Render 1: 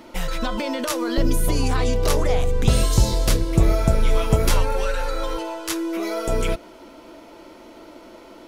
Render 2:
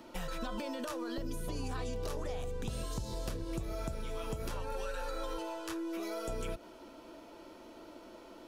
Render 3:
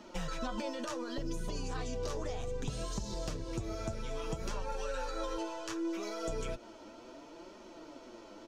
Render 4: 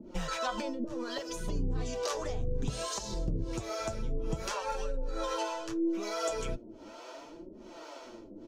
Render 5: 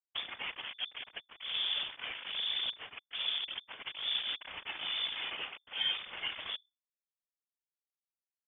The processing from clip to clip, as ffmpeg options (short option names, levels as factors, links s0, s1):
-filter_complex "[0:a]acompressor=threshold=0.0891:ratio=6,bandreject=f=2100:w=9.8,acrossover=split=81|2200|6800[s0][s1][s2][s3];[s0]acompressor=threshold=0.0282:ratio=4[s4];[s1]acompressor=threshold=0.0398:ratio=4[s5];[s2]acompressor=threshold=0.00708:ratio=4[s6];[s3]acompressor=threshold=0.00562:ratio=4[s7];[s4][s5][s6][s7]amix=inputs=4:normalize=0,volume=0.376"
-af "firequalizer=gain_entry='entry(3800,0);entry(6300,5);entry(11000,-12)':delay=0.05:min_phase=1,flanger=delay=4.7:depth=5.1:regen=36:speed=0.66:shape=triangular,volume=1.68"
-filter_complex "[0:a]acrossover=split=430[s0][s1];[s0]aeval=exprs='val(0)*(1-1/2+1/2*cos(2*PI*1.2*n/s))':c=same[s2];[s1]aeval=exprs='val(0)*(1-1/2-1/2*cos(2*PI*1.2*n/s))':c=same[s3];[s2][s3]amix=inputs=2:normalize=0,volume=2.66"
-af "acrusher=bits=4:mix=0:aa=0.000001,lowpass=f=3000:t=q:w=0.5098,lowpass=f=3000:t=q:w=0.6013,lowpass=f=3000:t=q:w=0.9,lowpass=f=3000:t=q:w=2.563,afreqshift=-3500,afftfilt=real='hypot(re,im)*cos(2*PI*random(0))':imag='hypot(re,im)*sin(2*PI*random(1))':win_size=512:overlap=0.75"